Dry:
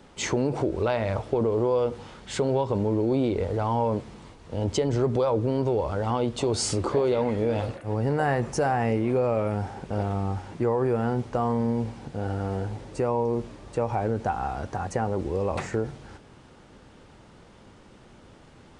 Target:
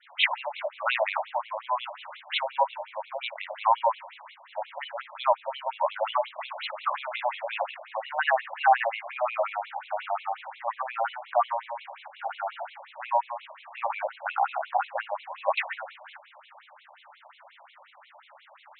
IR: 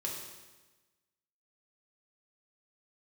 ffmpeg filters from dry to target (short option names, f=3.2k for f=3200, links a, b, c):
-filter_complex "[0:a]adynamicequalizer=threshold=0.00282:dfrequency=2700:dqfactor=2.1:tfrequency=2700:tqfactor=2.1:attack=5:release=100:ratio=0.375:range=3:mode=boostabove:tftype=bell,acontrast=58,asplit=2[a][b];[1:a]atrim=start_sample=2205[c];[b][c]afir=irnorm=-1:irlink=0,volume=-19dB[d];[a][d]amix=inputs=2:normalize=0,afftfilt=real='re*between(b*sr/1024,750*pow(3000/750,0.5+0.5*sin(2*PI*5.6*pts/sr))/1.41,750*pow(3000/750,0.5+0.5*sin(2*PI*5.6*pts/sr))*1.41)':imag='im*between(b*sr/1024,750*pow(3000/750,0.5+0.5*sin(2*PI*5.6*pts/sr))/1.41,750*pow(3000/750,0.5+0.5*sin(2*PI*5.6*pts/sr))*1.41)':win_size=1024:overlap=0.75,volume=2dB"